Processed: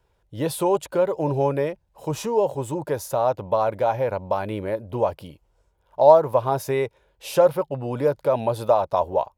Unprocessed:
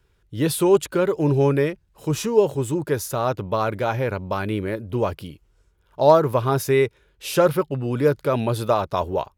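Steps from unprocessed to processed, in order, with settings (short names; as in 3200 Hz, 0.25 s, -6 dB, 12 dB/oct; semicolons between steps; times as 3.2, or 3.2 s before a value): band shelf 710 Hz +10.5 dB 1.2 oct; in parallel at -2 dB: compressor, threshold -18 dBFS, peak gain reduction 18 dB; on the sum: gain -9.5 dB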